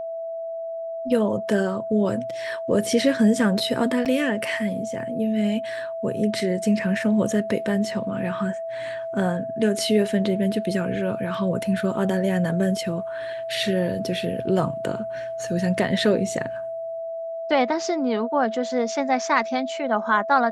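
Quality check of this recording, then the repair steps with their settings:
tone 660 Hz -28 dBFS
4.05–4.06 gap 7.3 ms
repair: notch 660 Hz, Q 30; interpolate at 4.05, 7.3 ms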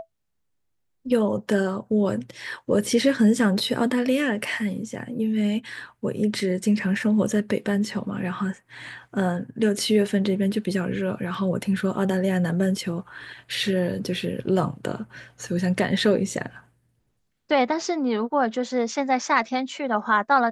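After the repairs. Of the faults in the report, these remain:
none

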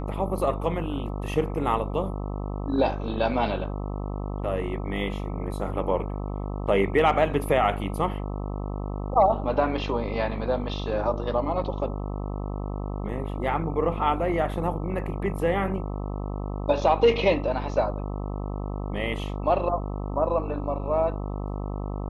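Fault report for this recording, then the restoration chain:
buzz 50 Hz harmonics 26 -31 dBFS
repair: de-hum 50 Hz, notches 26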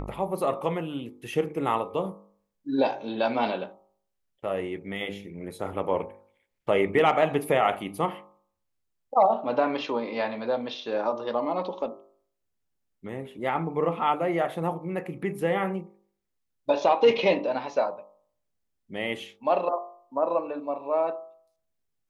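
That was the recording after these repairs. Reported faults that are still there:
none

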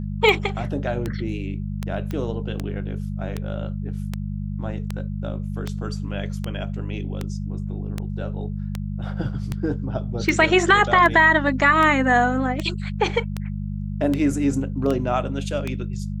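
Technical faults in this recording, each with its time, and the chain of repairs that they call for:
hum 50 Hz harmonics 4 -28 dBFS
tick 78 rpm -12 dBFS
2.11 pop -17 dBFS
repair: de-click; de-hum 50 Hz, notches 4

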